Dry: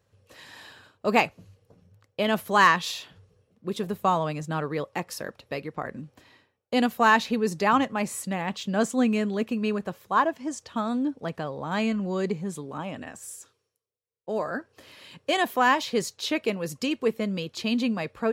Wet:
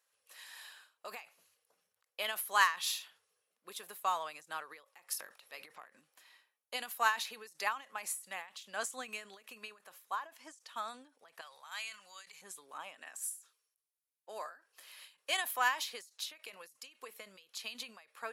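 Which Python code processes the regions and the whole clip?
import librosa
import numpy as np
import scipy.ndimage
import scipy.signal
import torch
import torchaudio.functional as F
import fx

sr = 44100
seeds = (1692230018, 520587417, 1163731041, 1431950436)

y = fx.chain(x, sr, fx.low_shelf(hz=120.0, db=8.5),
    fx.transient(attack_db=-8, sustain_db=9), at=(5.19, 5.91))
y = fx.chain(y, sr, fx.tone_stack(knobs='10-0-10'),
    fx.sustainer(db_per_s=28.0), at=(11.41, 12.42))
y = scipy.signal.sosfilt(scipy.signal.butter(2, 1100.0, 'highpass', fs=sr, output='sos'), y)
y = fx.peak_eq(y, sr, hz=11000.0, db=12.5, octaves=0.71)
y = fx.end_taper(y, sr, db_per_s=160.0)
y = y * librosa.db_to_amplitude(-5.0)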